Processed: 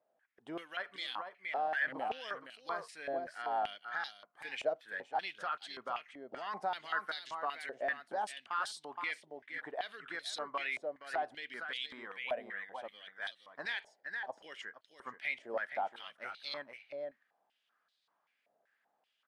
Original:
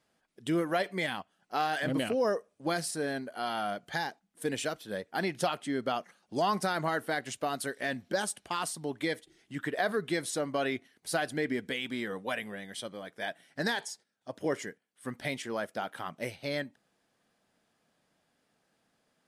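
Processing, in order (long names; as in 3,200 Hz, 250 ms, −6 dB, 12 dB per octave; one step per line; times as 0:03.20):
brickwall limiter −21.5 dBFS, peak gain reduction 5 dB
single-tap delay 469 ms −7.5 dB
band-pass on a step sequencer 5.2 Hz 630–3,900 Hz
level +4.5 dB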